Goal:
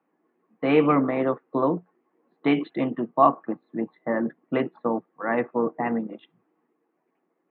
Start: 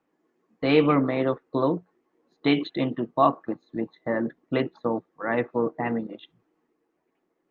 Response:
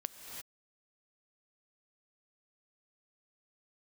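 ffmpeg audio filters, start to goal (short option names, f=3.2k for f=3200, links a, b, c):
-af "highpass=f=140:w=0.5412,highpass=f=140:w=1.3066,equalizer=f=210:t=q:w=4:g=3,equalizer=f=760:t=q:w=4:g=3,equalizer=f=1.1k:t=q:w=4:g=3,lowpass=f=2.7k:w=0.5412,lowpass=f=2.7k:w=1.3066"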